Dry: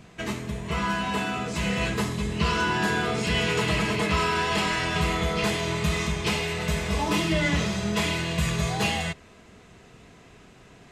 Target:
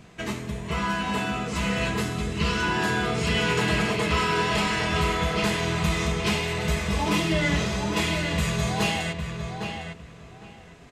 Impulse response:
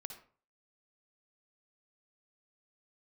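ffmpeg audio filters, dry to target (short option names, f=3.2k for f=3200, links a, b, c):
-filter_complex "[0:a]asettb=1/sr,asplit=3[a][b][c];[a]atrim=end=1.974[d];[b]atrim=start=1.97:end=2.63,asetpts=PTS-STARTPTS,afade=t=in:d=0.004:c=qsin,afade=t=out:st=0.656:d=0.004:c=qsin,equalizer=f=810:t=o:w=0.77:g=-7.5[e];[c]atrim=start=2.626[f];[d][e]acrossfade=d=0.004:c1=hsin:c2=qsin[g];[g][f]acrossfade=d=0.004:c1=qsin:c2=hsin,asplit=2[h][i];[i]adelay=807,lowpass=f=3k:p=1,volume=-6dB,asplit=2[j][k];[k]adelay=807,lowpass=f=3k:p=1,volume=0.21,asplit=2[l][m];[m]adelay=807,lowpass=f=3k:p=1,volume=0.21[n];[j][l][n]amix=inputs=3:normalize=0[o];[h][o]amix=inputs=2:normalize=0"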